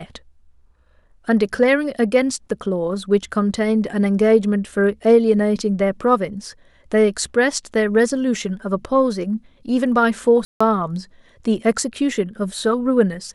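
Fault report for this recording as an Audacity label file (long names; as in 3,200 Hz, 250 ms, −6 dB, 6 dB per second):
10.450000	10.610000	drop-out 155 ms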